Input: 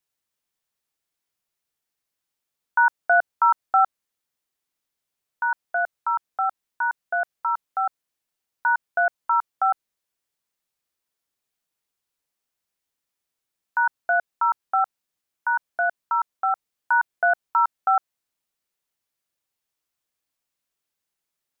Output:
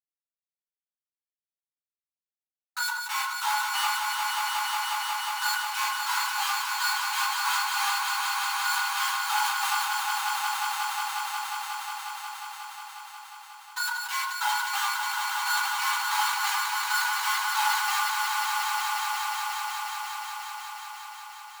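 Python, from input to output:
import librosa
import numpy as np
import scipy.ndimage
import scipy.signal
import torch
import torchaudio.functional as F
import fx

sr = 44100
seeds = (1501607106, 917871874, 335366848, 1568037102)

p1 = fx.env_lowpass_down(x, sr, base_hz=1100.0, full_db=-18.5)
p2 = scipy.signal.sosfilt(scipy.signal.bessel(2, 1500.0, 'lowpass', norm='mag', fs=sr, output='sos'), p1)
p3 = fx.level_steps(p2, sr, step_db=10)
p4 = fx.leveller(p3, sr, passes=1)
p5 = fx.pitch_keep_formants(p4, sr, semitones=7.5)
p6 = fx.schmitt(p5, sr, flips_db=-33.5)
p7 = fx.brickwall_highpass(p6, sr, low_hz=800.0)
p8 = p7 + fx.echo_swell(p7, sr, ms=180, loudest=5, wet_db=-5.5, dry=0)
p9 = fx.room_shoebox(p8, sr, seeds[0], volume_m3=210.0, walls='furnished', distance_m=6.3)
p10 = fx.sustainer(p9, sr, db_per_s=35.0)
y = F.gain(torch.from_numpy(p10), -1.5).numpy()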